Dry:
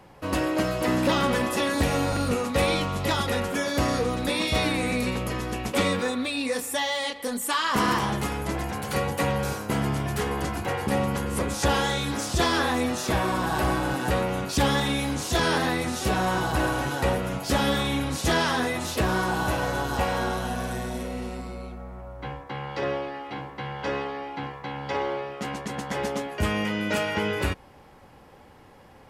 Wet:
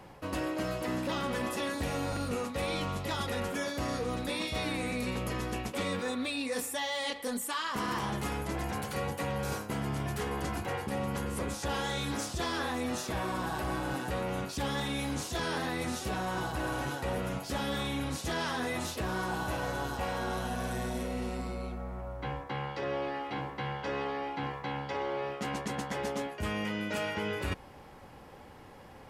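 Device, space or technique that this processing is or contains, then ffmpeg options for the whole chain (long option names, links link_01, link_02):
compression on the reversed sound: -af "areverse,acompressor=threshold=-31dB:ratio=6,areverse"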